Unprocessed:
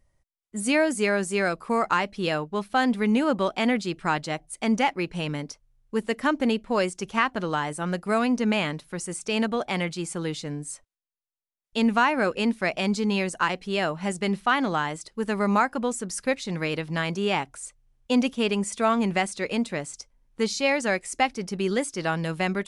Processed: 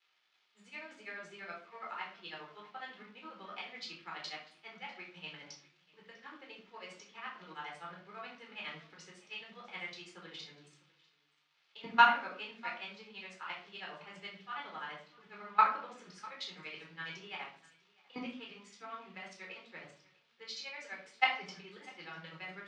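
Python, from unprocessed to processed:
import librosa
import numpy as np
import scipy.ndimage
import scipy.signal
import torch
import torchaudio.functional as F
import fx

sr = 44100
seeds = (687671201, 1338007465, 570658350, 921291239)

y = fx.level_steps(x, sr, step_db=19)
y = y * (1.0 - 0.95 / 2.0 + 0.95 / 2.0 * np.cos(2.0 * np.pi * 12.0 * (np.arange(len(y)) / sr)))
y = fx.dmg_crackle(y, sr, seeds[0], per_s=480.0, level_db=-48.0)
y = fx.bandpass_q(y, sr, hz=3300.0, q=0.8)
y = fx.air_absorb(y, sr, metres=200.0)
y = y + 10.0 ** (-18.5 / 20.0) * np.pad(y, (int(648 * sr / 1000.0), 0))[:len(y)]
y = fx.room_shoebox(y, sr, seeds[1], volume_m3=650.0, walls='furnished', distance_m=4.1)
y = fx.band_widen(y, sr, depth_pct=40)
y = F.gain(torch.from_numpy(y), 1.5).numpy()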